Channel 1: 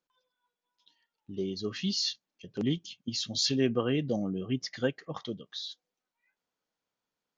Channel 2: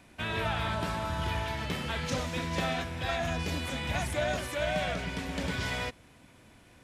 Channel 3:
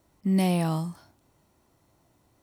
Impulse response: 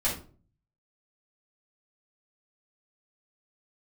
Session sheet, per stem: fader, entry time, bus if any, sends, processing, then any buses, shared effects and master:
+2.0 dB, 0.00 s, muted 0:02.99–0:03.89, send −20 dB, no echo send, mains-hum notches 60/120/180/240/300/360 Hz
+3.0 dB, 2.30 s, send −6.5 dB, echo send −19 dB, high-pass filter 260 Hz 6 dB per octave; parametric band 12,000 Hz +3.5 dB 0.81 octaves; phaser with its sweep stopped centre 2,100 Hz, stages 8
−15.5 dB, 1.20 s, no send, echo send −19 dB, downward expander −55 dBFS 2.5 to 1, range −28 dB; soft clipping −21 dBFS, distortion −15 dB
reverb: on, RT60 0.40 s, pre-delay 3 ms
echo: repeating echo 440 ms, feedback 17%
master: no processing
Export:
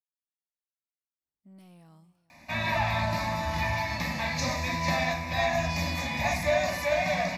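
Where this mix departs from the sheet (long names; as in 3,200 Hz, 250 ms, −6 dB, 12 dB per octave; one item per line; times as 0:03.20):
stem 1: muted
stem 3 −15.5 dB → −26.5 dB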